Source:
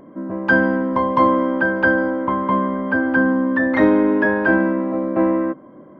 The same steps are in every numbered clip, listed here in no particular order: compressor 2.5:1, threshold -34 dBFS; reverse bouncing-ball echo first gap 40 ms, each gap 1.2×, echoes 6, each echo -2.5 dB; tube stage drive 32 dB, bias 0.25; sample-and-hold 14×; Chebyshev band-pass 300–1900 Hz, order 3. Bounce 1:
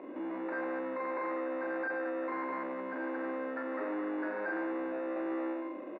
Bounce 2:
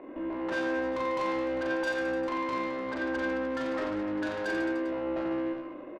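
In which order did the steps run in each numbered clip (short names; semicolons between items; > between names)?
compressor > reverse bouncing-ball echo > tube stage > sample-and-hold > Chebyshev band-pass; sample-and-hold > Chebyshev band-pass > compressor > tube stage > reverse bouncing-ball echo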